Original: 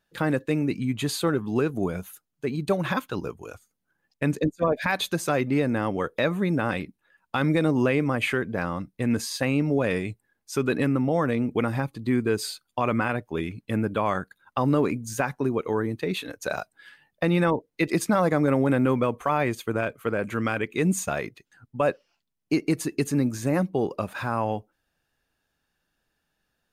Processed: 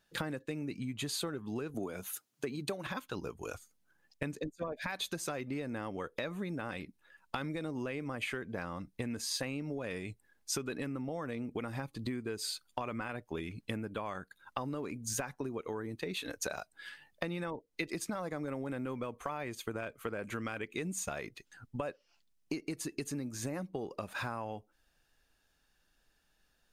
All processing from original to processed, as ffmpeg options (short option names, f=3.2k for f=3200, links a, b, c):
-filter_complex "[0:a]asettb=1/sr,asplit=3[a][b][c];[a]atrim=end=1.744[d];[b]atrim=start=1.74:end=2.87,asetpts=PTS-STARTPTS,afade=t=in:d=0.004:c=qsin,afade=t=out:st=1.126:d=0.004:c=qsin,highpass=f=110:w=0.5412,highpass=f=110:w=1.3066,equalizer=f=170:t=o:w=0.26:g=-9.5,acontrast=48[e];[c]atrim=start=2.866[f];[d][e]acrossfade=d=0.004:c1=hsin:c2=qsin[g];[g][f]acrossfade=d=0.004:c1=qsin:c2=hsin,asubboost=boost=2.5:cutoff=59,acompressor=threshold=-35dB:ratio=12,equalizer=f=6k:w=0.55:g=4.5"